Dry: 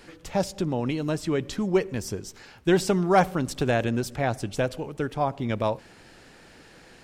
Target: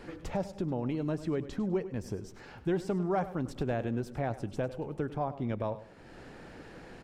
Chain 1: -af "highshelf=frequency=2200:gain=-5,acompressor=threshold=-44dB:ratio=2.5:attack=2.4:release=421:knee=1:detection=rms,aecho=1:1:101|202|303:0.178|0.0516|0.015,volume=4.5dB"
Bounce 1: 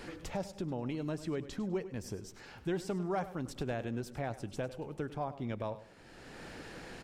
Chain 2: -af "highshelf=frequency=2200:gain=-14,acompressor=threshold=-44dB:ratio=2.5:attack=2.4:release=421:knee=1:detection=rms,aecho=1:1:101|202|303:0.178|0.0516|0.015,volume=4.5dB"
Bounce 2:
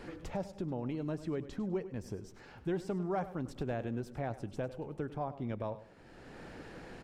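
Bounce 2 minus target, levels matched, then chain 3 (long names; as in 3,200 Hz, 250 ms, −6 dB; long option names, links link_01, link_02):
downward compressor: peak gain reduction +4.5 dB
-af "highshelf=frequency=2200:gain=-14,acompressor=threshold=-36.5dB:ratio=2.5:attack=2.4:release=421:knee=1:detection=rms,aecho=1:1:101|202|303:0.178|0.0516|0.015,volume=4.5dB"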